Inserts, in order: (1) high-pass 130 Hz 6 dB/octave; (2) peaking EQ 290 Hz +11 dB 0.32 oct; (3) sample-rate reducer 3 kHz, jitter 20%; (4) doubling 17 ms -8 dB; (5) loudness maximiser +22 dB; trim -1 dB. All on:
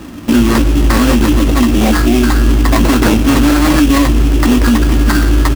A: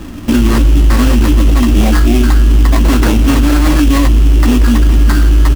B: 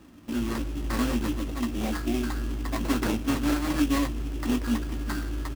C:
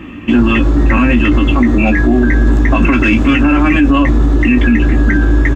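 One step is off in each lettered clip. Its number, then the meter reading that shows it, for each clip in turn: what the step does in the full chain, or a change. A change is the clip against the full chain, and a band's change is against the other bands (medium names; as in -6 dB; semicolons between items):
1, crest factor change -2.0 dB; 5, crest factor change +8.5 dB; 3, distortion -4 dB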